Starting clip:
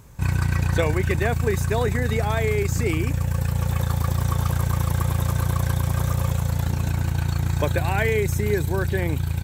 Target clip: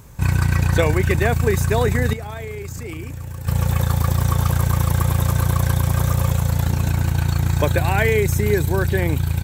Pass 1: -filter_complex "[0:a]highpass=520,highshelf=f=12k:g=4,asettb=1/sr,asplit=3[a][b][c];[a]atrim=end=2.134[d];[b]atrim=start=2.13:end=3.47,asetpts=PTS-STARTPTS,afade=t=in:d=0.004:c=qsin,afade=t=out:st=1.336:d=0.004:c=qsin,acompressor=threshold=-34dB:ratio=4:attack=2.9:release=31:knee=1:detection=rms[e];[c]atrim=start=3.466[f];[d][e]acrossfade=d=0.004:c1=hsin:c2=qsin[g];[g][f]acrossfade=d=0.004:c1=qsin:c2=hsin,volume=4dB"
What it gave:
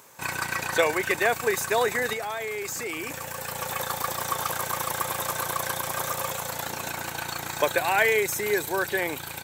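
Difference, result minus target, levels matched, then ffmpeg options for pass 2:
500 Hz band +3.5 dB
-filter_complex "[0:a]highshelf=f=12k:g=4,asettb=1/sr,asplit=3[a][b][c];[a]atrim=end=2.134[d];[b]atrim=start=2.13:end=3.47,asetpts=PTS-STARTPTS,afade=t=in:d=0.004:c=qsin,afade=t=out:st=1.336:d=0.004:c=qsin,acompressor=threshold=-34dB:ratio=4:attack=2.9:release=31:knee=1:detection=rms[e];[c]atrim=start=3.466[f];[d][e]acrossfade=d=0.004:c1=hsin:c2=qsin[g];[g][f]acrossfade=d=0.004:c1=qsin:c2=hsin,volume=4dB"

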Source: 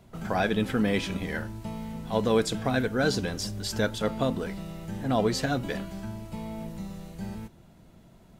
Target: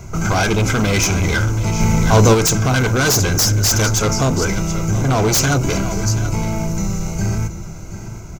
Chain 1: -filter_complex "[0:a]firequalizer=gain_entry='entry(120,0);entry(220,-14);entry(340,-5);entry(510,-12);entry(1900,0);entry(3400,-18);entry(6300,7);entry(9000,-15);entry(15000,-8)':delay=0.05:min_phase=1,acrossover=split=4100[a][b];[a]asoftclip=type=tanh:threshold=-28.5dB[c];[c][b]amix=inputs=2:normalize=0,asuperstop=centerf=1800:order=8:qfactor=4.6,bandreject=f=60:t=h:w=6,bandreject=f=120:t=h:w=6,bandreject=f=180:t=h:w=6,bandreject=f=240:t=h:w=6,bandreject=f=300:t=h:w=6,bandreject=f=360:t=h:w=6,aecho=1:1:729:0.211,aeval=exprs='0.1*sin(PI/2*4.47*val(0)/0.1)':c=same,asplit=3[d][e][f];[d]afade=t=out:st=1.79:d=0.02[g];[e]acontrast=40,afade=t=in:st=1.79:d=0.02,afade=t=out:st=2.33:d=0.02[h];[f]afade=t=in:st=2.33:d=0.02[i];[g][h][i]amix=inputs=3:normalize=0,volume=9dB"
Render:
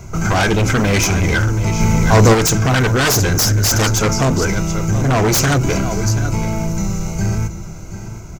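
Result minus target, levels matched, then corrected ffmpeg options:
soft clip: distortion -7 dB
-filter_complex "[0:a]firequalizer=gain_entry='entry(120,0);entry(220,-14);entry(340,-5);entry(510,-12);entry(1900,0);entry(3400,-18);entry(6300,7);entry(9000,-15);entry(15000,-8)':delay=0.05:min_phase=1,acrossover=split=4100[a][b];[a]asoftclip=type=tanh:threshold=-36.5dB[c];[c][b]amix=inputs=2:normalize=0,asuperstop=centerf=1800:order=8:qfactor=4.6,bandreject=f=60:t=h:w=6,bandreject=f=120:t=h:w=6,bandreject=f=180:t=h:w=6,bandreject=f=240:t=h:w=6,bandreject=f=300:t=h:w=6,bandreject=f=360:t=h:w=6,aecho=1:1:729:0.211,aeval=exprs='0.1*sin(PI/2*4.47*val(0)/0.1)':c=same,asplit=3[d][e][f];[d]afade=t=out:st=1.79:d=0.02[g];[e]acontrast=40,afade=t=in:st=1.79:d=0.02,afade=t=out:st=2.33:d=0.02[h];[f]afade=t=in:st=2.33:d=0.02[i];[g][h][i]amix=inputs=3:normalize=0,volume=9dB"

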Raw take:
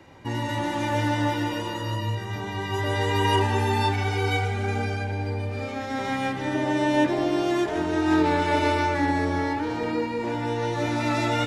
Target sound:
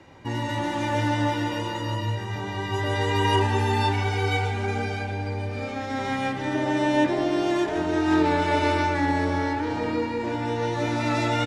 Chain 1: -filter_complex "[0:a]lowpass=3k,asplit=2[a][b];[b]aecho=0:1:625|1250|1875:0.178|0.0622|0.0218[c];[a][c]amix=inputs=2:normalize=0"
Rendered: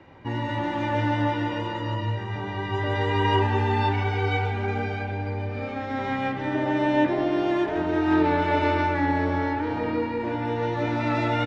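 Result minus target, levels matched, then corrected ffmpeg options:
8000 Hz band -14.0 dB
-filter_complex "[0:a]lowpass=10k,asplit=2[a][b];[b]aecho=0:1:625|1250|1875:0.178|0.0622|0.0218[c];[a][c]amix=inputs=2:normalize=0"

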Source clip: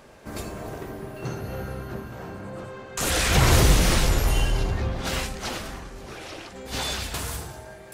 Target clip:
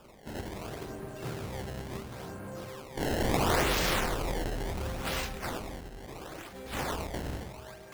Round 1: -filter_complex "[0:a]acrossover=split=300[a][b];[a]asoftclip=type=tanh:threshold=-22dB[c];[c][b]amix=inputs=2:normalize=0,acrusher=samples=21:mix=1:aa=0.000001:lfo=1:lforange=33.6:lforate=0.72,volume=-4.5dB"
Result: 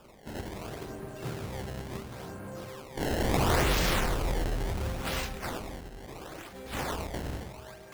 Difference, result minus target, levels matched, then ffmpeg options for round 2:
soft clip: distortion -5 dB
-filter_complex "[0:a]acrossover=split=300[a][b];[a]asoftclip=type=tanh:threshold=-28.5dB[c];[c][b]amix=inputs=2:normalize=0,acrusher=samples=21:mix=1:aa=0.000001:lfo=1:lforange=33.6:lforate=0.72,volume=-4.5dB"

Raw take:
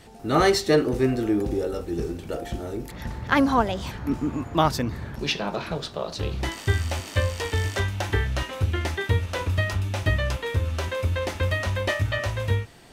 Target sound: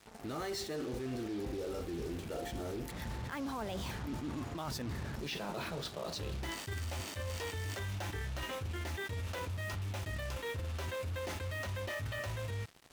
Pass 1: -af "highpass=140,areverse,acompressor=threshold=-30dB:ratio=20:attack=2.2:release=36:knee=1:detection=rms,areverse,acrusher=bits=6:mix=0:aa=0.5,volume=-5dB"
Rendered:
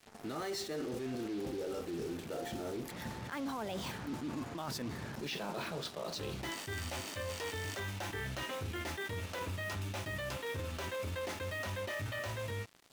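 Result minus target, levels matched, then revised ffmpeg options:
125 Hz band -3.0 dB
-af "highpass=41,areverse,acompressor=threshold=-30dB:ratio=20:attack=2.2:release=36:knee=1:detection=rms,areverse,acrusher=bits=6:mix=0:aa=0.5,volume=-5dB"

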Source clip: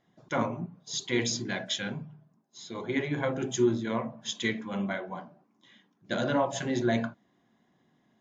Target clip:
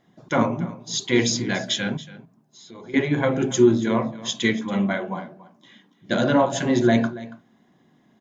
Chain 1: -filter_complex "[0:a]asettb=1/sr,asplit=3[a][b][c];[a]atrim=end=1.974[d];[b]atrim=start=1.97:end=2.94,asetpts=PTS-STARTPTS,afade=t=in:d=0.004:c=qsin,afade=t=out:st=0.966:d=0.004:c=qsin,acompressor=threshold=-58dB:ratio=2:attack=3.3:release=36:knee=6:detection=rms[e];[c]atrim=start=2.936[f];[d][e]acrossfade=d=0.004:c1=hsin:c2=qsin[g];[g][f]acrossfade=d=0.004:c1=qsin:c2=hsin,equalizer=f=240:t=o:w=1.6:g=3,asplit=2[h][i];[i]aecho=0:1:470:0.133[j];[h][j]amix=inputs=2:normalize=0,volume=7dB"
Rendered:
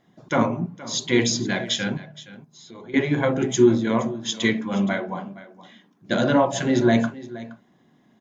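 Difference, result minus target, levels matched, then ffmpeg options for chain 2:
echo 0.189 s late
-filter_complex "[0:a]asettb=1/sr,asplit=3[a][b][c];[a]atrim=end=1.974[d];[b]atrim=start=1.97:end=2.94,asetpts=PTS-STARTPTS,afade=t=in:d=0.004:c=qsin,afade=t=out:st=0.966:d=0.004:c=qsin,acompressor=threshold=-58dB:ratio=2:attack=3.3:release=36:knee=6:detection=rms[e];[c]atrim=start=2.936[f];[d][e]acrossfade=d=0.004:c1=hsin:c2=qsin[g];[g][f]acrossfade=d=0.004:c1=qsin:c2=hsin,equalizer=f=240:t=o:w=1.6:g=3,asplit=2[h][i];[i]aecho=0:1:281:0.133[j];[h][j]amix=inputs=2:normalize=0,volume=7dB"

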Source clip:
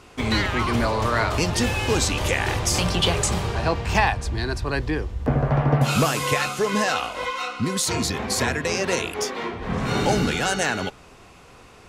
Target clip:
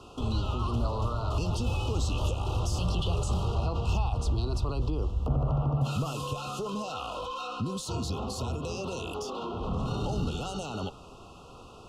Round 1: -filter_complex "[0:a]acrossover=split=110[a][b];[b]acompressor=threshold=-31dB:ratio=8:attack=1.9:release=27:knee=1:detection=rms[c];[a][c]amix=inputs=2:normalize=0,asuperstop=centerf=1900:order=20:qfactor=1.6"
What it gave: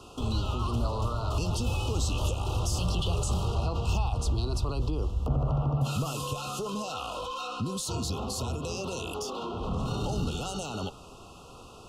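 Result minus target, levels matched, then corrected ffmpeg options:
8000 Hz band +5.0 dB
-filter_complex "[0:a]acrossover=split=110[a][b];[b]acompressor=threshold=-31dB:ratio=8:attack=1.9:release=27:knee=1:detection=rms,highshelf=f=6.3k:g=-9.5[c];[a][c]amix=inputs=2:normalize=0,asuperstop=centerf=1900:order=20:qfactor=1.6"

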